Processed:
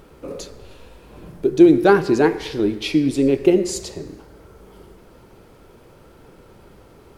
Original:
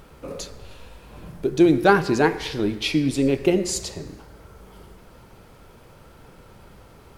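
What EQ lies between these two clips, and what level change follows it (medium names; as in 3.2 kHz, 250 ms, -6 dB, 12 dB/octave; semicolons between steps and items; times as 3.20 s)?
peaking EQ 360 Hz +7 dB 1.1 oct; -1.5 dB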